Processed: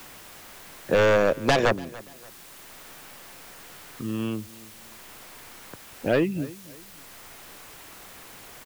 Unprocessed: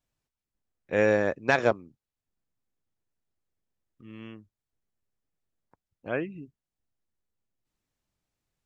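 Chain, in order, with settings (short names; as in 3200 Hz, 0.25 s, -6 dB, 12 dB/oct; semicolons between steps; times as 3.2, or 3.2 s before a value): LFO notch sine 0.32 Hz 810–2300 Hz; sine folder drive 11 dB, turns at -10 dBFS; added noise white -49 dBFS; on a send: feedback echo 0.288 s, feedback 23%, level -23 dB; on the sum: three-band squash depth 40%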